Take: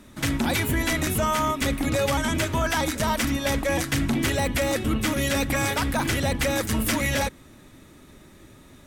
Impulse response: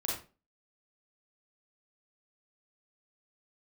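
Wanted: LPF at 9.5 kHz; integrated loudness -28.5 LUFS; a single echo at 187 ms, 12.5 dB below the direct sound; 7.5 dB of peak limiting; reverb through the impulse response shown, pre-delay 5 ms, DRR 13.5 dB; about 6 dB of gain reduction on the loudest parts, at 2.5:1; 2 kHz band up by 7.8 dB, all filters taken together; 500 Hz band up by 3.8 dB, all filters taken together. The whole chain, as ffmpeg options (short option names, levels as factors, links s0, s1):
-filter_complex "[0:a]lowpass=9500,equalizer=f=500:t=o:g=4,equalizer=f=2000:t=o:g=9,acompressor=threshold=0.0562:ratio=2.5,alimiter=limit=0.0891:level=0:latency=1,aecho=1:1:187:0.237,asplit=2[s0][s1];[1:a]atrim=start_sample=2205,adelay=5[s2];[s1][s2]afir=irnorm=-1:irlink=0,volume=0.133[s3];[s0][s3]amix=inputs=2:normalize=0"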